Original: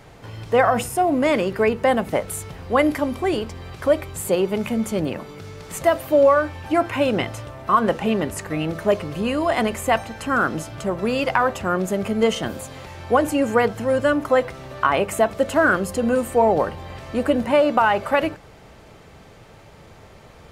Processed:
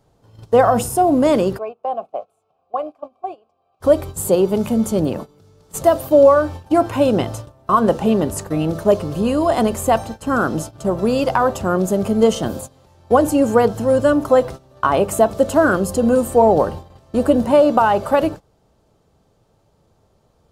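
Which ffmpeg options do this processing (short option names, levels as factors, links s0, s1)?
-filter_complex "[0:a]asplit=3[s0][s1][s2];[s0]afade=t=out:st=1.57:d=0.02[s3];[s1]asplit=3[s4][s5][s6];[s4]bandpass=f=730:t=q:w=8,volume=1[s7];[s5]bandpass=f=1090:t=q:w=8,volume=0.501[s8];[s6]bandpass=f=2440:t=q:w=8,volume=0.355[s9];[s7][s8][s9]amix=inputs=3:normalize=0,afade=t=in:st=1.57:d=0.02,afade=t=out:st=3.8:d=0.02[s10];[s2]afade=t=in:st=3.8:d=0.02[s11];[s3][s10][s11]amix=inputs=3:normalize=0,agate=range=0.126:threshold=0.0251:ratio=16:detection=peak,equalizer=f=2100:w=1.3:g=-14,volume=1.88"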